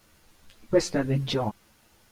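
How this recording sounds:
a quantiser's noise floor 12 bits, dither triangular
a shimmering, thickened sound

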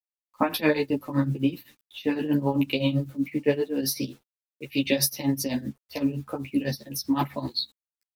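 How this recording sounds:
a quantiser's noise floor 10 bits, dither none
tremolo triangle 7.8 Hz, depth 90%
a shimmering, thickened sound

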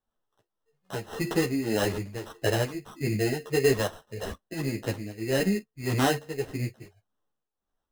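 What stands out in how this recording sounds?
tremolo triangle 1.7 Hz, depth 80%
aliases and images of a low sample rate 2,300 Hz, jitter 0%
a shimmering, thickened sound

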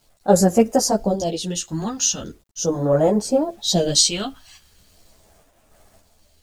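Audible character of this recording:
phaser sweep stages 2, 0.4 Hz, lowest notch 510–3,600 Hz
a quantiser's noise floor 10 bits, dither none
sample-and-hold tremolo
a shimmering, thickened sound

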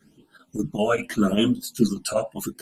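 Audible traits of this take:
phaser sweep stages 12, 0.8 Hz, lowest notch 310–2,300 Hz
chopped level 5.1 Hz, depth 60%, duty 85%
a shimmering, thickened sound

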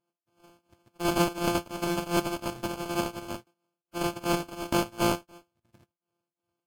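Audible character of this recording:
a buzz of ramps at a fixed pitch in blocks of 128 samples
tremolo triangle 2.8 Hz, depth 95%
aliases and images of a low sample rate 1,900 Hz, jitter 0%
Ogg Vorbis

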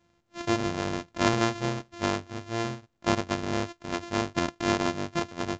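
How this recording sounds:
a buzz of ramps at a fixed pitch in blocks of 128 samples
mu-law

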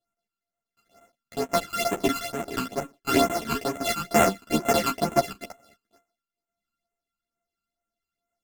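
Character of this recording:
a buzz of ramps at a fixed pitch in blocks of 64 samples
phaser sweep stages 12, 2.2 Hz, lowest notch 600–4,700 Hz
sample-and-hold tremolo 3.5 Hz
a shimmering, thickened sound

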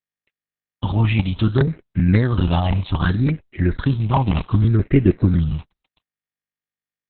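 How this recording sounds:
a quantiser's noise floor 8 bits, dither none
phaser sweep stages 6, 0.65 Hz, lowest notch 410–1,000 Hz
Opus

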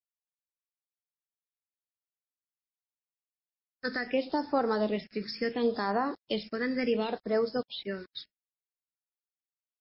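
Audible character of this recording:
a quantiser's noise floor 8 bits, dither none
phaser sweep stages 6, 0.71 Hz, lowest notch 790–3,100 Hz
MP3

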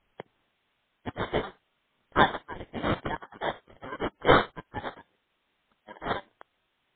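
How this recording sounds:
aliases and images of a low sample rate 2,600 Hz, jitter 0%
chopped level 0.51 Hz, depth 65%, duty 25%
a quantiser's noise floor 12 bits, dither triangular
MP3

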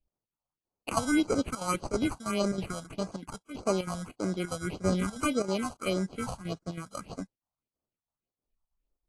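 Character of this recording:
aliases and images of a low sample rate 1,800 Hz, jitter 0%
chopped level 3.1 Hz, depth 65%, duty 80%
phaser sweep stages 4, 1.7 Hz, lowest notch 340–3,200 Hz
AAC

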